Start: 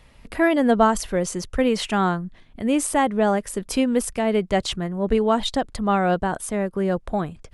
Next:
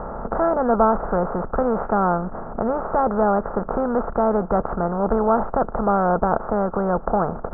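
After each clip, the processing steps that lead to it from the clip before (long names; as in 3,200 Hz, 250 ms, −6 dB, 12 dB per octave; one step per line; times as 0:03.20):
compressor on every frequency bin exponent 0.4
Chebyshev low-pass filter 1,400 Hz, order 5
parametric band 290 Hz −14 dB 0.3 octaves
level −1.5 dB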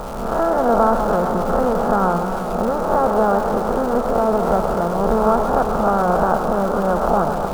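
peak hold with a rise ahead of every peak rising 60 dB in 0.71 s
surface crackle 520 per second −28 dBFS
feedback echo with a swinging delay time 133 ms, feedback 80%, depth 106 cents, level −9 dB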